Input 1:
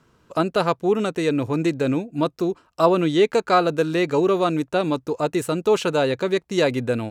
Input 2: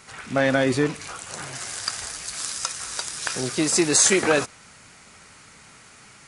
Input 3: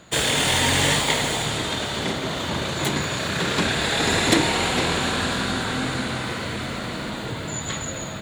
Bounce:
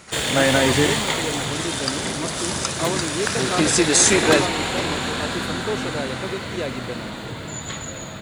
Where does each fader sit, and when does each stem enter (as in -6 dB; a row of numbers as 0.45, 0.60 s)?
-9.0, +1.5, -2.0 dB; 0.00, 0.00, 0.00 s